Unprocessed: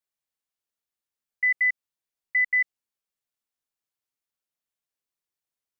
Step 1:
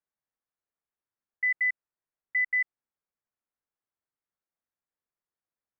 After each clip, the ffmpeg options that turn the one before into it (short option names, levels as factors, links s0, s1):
-af "lowpass=f=1900:w=0.5412,lowpass=f=1900:w=1.3066"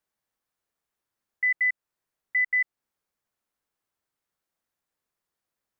-af "alimiter=level_in=1.41:limit=0.0631:level=0:latency=1:release=222,volume=0.708,volume=2.51"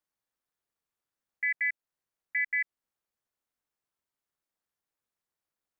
-af "tremolo=f=290:d=0.889,volume=0.841"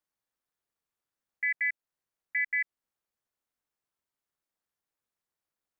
-af anull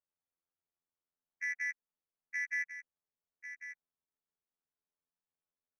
-af "afftfilt=real='hypot(re,im)*cos(PI*b)':imag='0':win_size=2048:overlap=0.75,adynamicsmooth=sensitivity=3.5:basefreq=1700,aecho=1:1:1096:0.316,volume=0.794"